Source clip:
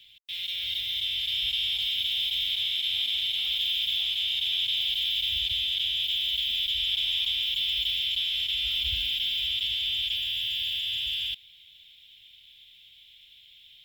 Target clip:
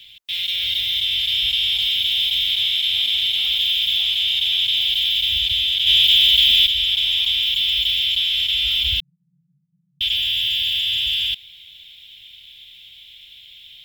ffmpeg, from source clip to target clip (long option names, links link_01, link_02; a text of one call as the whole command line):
ffmpeg -i in.wav -filter_complex "[0:a]asplit=2[link_01][link_02];[link_02]alimiter=limit=-24dB:level=0:latency=1,volume=-1dB[link_03];[link_01][link_03]amix=inputs=2:normalize=0,asplit=3[link_04][link_05][link_06];[link_04]afade=type=out:start_time=5.86:duration=0.02[link_07];[link_05]acontrast=57,afade=type=in:start_time=5.86:duration=0.02,afade=type=out:start_time=6.66:duration=0.02[link_08];[link_06]afade=type=in:start_time=6.66:duration=0.02[link_09];[link_07][link_08][link_09]amix=inputs=3:normalize=0,asettb=1/sr,asplit=3[link_10][link_11][link_12];[link_10]atrim=end=9.004[link_13];[link_11]atrim=start=9:end=10.01,asetpts=PTS-STARTPTS,afade=type=in:duration=0.004:curve=qsin,afade=type=out:start_time=1.006:duration=0.004:curve=qsin,asuperpass=centerf=160:order=12:qfactor=3[link_14];[link_12]atrim=start=10.006[link_15];[link_13][link_14]acrossfade=duration=0.004:curve1=hsin:curve2=qsin[link_16];[link_16][link_15]acrossfade=duration=0.004:curve1=qsin:curve2=hsin,volume=4.5dB" out.wav